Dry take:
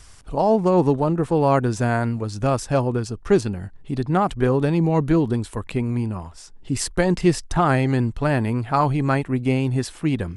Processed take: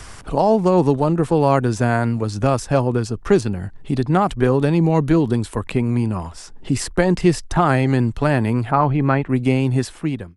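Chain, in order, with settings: ending faded out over 0.58 s; 8.7–9.28 LPF 1800 Hz -> 3000 Hz 12 dB/oct; three-band squash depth 40%; gain +2.5 dB

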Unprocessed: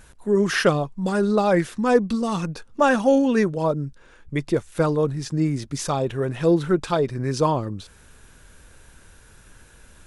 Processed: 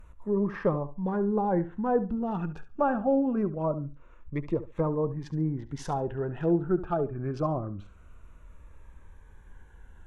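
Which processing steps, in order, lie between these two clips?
Wiener smoothing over 9 samples; treble ducked by the level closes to 1000 Hz, closed at -18 dBFS; graphic EQ 125/250/500/2000/4000/8000 Hz -8/-7/-7/-7/-9/-7 dB; flutter echo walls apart 12 m, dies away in 0.29 s; cascading phaser falling 0.24 Hz; gain +2.5 dB

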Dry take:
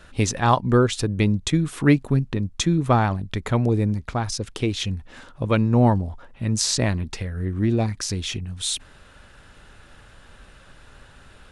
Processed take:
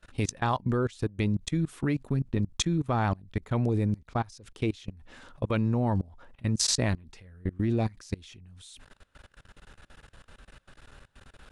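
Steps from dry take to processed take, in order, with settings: level quantiser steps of 24 dB; gain -1.5 dB

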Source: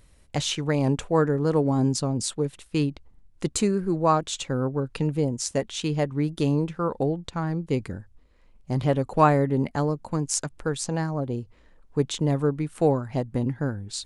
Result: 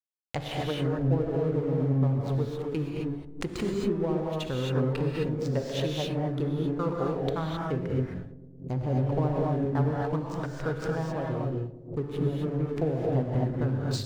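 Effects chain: treble ducked by the level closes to 410 Hz, closed at -18.5 dBFS; bell 230 Hz -6 dB 1 oct; de-hum 48.4 Hz, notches 16; in parallel at +2 dB: compressor, threshold -33 dBFS, peak gain reduction 12 dB; on the sum: backlash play -32.5 dBFS; darkening echo 0.112 s, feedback 79%, low-pass 830 Hz, level -16 dB; non-linear reverb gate 0.29 s rising, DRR -2 dB; backwards sustainer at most 140 dB/s; gain -6.5 dB

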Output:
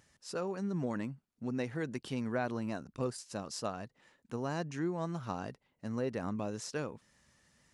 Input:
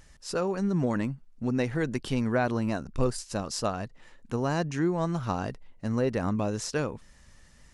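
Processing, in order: HPF 110 Hz 12 dB/oct; gain -8 dB

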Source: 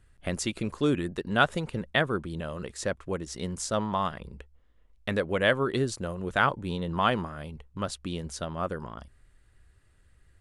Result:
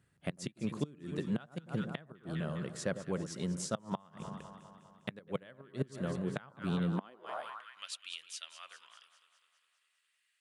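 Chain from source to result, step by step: echo with dull and thin repeats by turns 0.101 s, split 1300 Hz, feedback 77%, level -11 dB; flipped gate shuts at -17 dBFS, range -26 dB; high-pass sweep 150 Hz -> 2600 Hz, 6.86–7.84; gain -6.5 dB

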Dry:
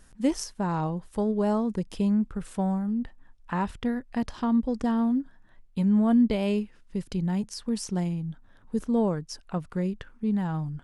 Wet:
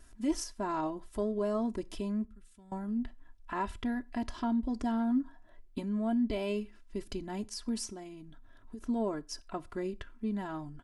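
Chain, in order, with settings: limiter -20.5 dBFS, peak gain reduction 7.5 dB; 4.99–5.79 bell 1900 Hz -> 290 Hz +12 dB 0.54 oct; comb 3 ms, depth 87%; 2.25–2.72 passive tone stack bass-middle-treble 6-0-2; 7.85–8.84 compressor 6:1, threshold -37 dBFS, peak gain reduction 11.5 dB; reverb, pre-delay 4 ms, DRR 19 dB; gain -5 dB

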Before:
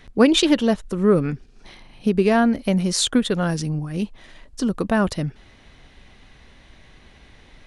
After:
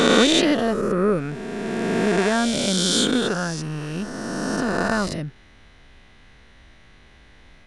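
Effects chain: spectral swells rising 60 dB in 3.00 s; bell 1500 Hz +3.5 dB 0.77 oct; gain -6 dB

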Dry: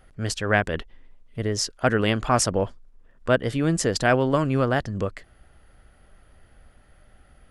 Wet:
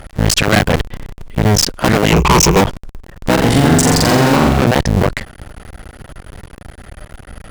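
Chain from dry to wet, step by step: cycle switcher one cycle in 2, muted; 2.11–2.61 ripple EQ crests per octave 0.76, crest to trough 18 dB; tube stage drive 31 dB, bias 0.35; 3.33–4.61 flutter echo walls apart 7.5 m, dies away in 0.96 s; maximiser +25 dB; gain -1 dB

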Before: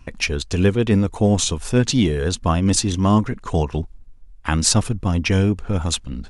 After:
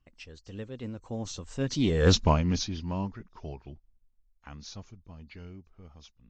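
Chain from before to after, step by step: nonlinear frequency compression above 3800 Hz 1.5:1; Doppler pass-by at 2.13, 30 m/s, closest 2.5 m; Doppler distortion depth 0.18 ms; gain +3 dB

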